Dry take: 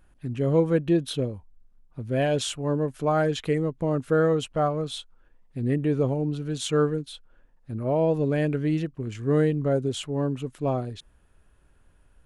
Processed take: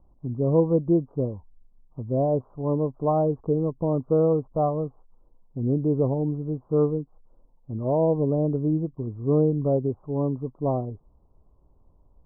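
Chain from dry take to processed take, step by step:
Butterworth low-pass 1,100 Hz 72 dB per octave
level +1 dB

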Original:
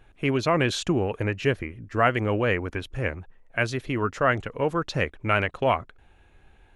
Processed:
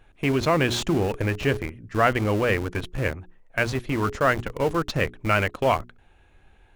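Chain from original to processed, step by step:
mains-hum notches 60/120/180/240/300/360/420 Hz
in parallel at −7 dB: comparator with hysteresis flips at −29 dBFS

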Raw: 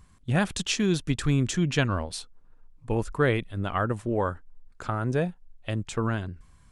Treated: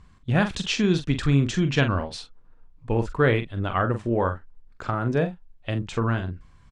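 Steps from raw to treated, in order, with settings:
low-pass filter 4,900 Hz 12 dB per octave
double-tracking delay 43 ms −8.5 dB
level +2.5 dB

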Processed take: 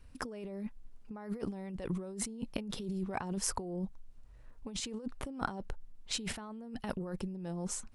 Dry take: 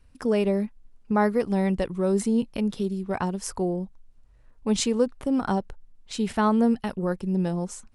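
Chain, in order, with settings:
compressor whose output falls as the input rises −33 dBFS, ratio −1
level −6.5 dB

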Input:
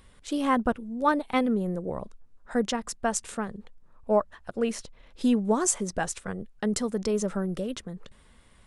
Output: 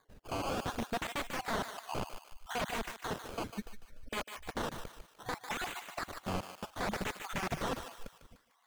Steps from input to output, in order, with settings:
time-frequency cells dropped at random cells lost 55%
noise gate −59 dBFS, range −7 dB
in parallel at −1 dB: output level in coarse steps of 10 dB
on the sum: brickwall limiter −18 dBFS, peak gain reduction 11.5 dB
wrap-around overflow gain 28 dB
Savitzky-Golay smoothing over 25 samples
sample-and-hold swept by an LFO 16×, swing 100% 0.66 Hz
on a send: feedback echo with a high-pass in the loop 149 ms, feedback 44%, high-pass 820 Hz, level −8 dB
on the sum: slew-rate limiting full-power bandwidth 100 Hz

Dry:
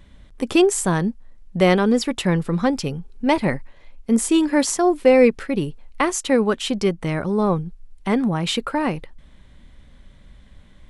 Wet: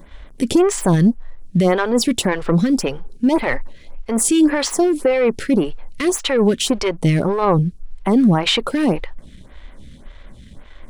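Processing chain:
brickwall limiter −14.5 dBFS, peak gain reduction 12 dB
leveller curve on the samples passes 1
phaser with staggered stages 1.8 Hz
level +8.5 dB

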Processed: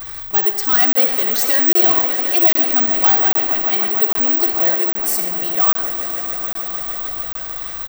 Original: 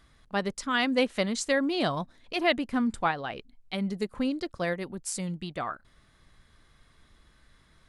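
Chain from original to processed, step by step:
converter with a step at zero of −41 dBFS
parametric band 960 Hz +7.5 dB 2.5 octaves
echo that builds up and dies away 151 ms, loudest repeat 5, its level −16 dB
soft clipping −21 dBFS, distortion −9 dB
comb filter 2.6 ms, depth 64%
convolution reverb RT60 0.90 s, pre-delay 47 ms, DRR 6 dB
bad sample-rate conversion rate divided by 2×, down filtered, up zero stuff
high-shelf EQ 3,300 Hz +9.5 dB
notch filter 7,000 Hz, Q 15
regular buffer underruns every 0.80 s, samples 1,024, zero, from 0:00.93

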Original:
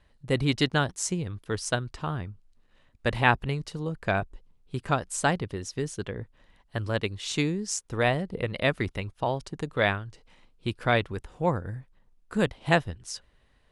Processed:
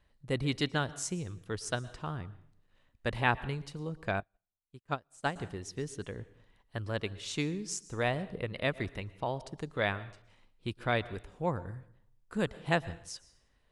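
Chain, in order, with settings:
on a send at −18 dB: convolution reverb RT60 0.60 s, pre-delay 107 ms
0:04.20–0:05.36: on the sum: expander for the loud parts 2.5 to 1, over −43 dBFS
level −6.5 dB

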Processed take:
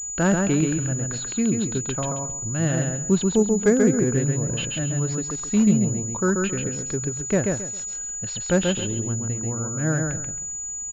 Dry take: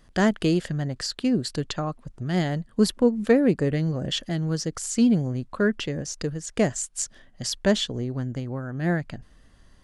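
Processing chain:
speed change −10%
repeating echo 135 ms, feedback 25%, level −3.5 dB
switching amplifier with a slow clock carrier 6,900 Hz

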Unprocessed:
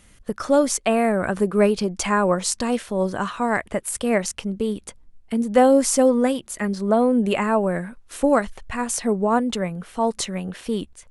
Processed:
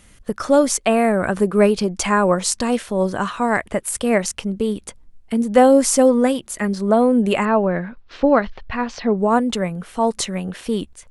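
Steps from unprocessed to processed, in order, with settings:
0:07.45–0:09.18: Butterworth low-pass 4,900 Hz 36 dB per octave
level +3 dB

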